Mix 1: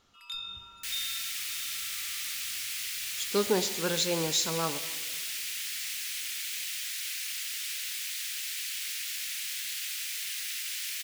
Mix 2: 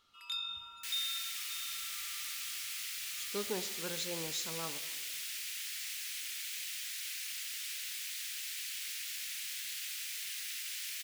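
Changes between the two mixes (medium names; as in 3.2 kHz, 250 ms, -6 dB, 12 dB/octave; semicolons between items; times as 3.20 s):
speech -11.5 dB; second sound -5.5 dB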